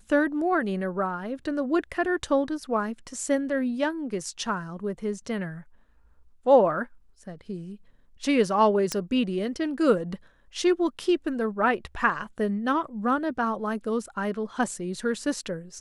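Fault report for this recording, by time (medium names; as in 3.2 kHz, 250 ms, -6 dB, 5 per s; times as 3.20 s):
8.92 s: pop -12 dBFS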